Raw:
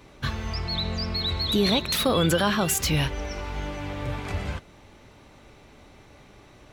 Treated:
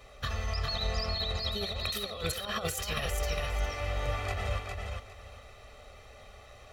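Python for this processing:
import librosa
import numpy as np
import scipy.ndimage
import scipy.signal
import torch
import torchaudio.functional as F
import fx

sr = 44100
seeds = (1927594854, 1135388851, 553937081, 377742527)

p1 = fx.peak_eq(x, sr, hz=160.0, db=-14.0, octaves=1.0)
p2 = p1 + 0.83 * np.pad(p1, (int(1.6 * sr / 1000.0), 0))[:len(p1)]
p3 = fx.over_compress(p2, sr, threshold_db=-27.0, ratio=-0.5)
p4 = p3 + fx.echo_feedback(p3, sr, ms=406, feedback_pct=21, wet_db=-4, dry=0)
y = p4 * librosa.db_to_amplitude(-5.5)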